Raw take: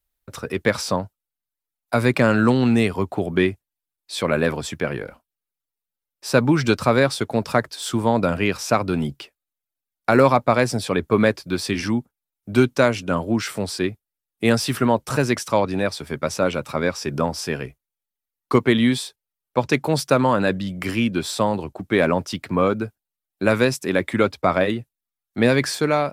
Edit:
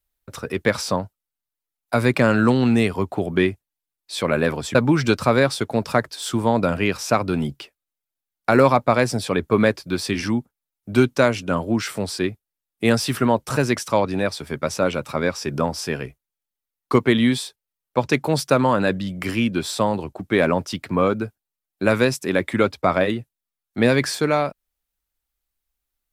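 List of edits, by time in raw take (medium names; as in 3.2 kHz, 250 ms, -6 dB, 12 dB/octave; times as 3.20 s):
4.75–6.35 s: delete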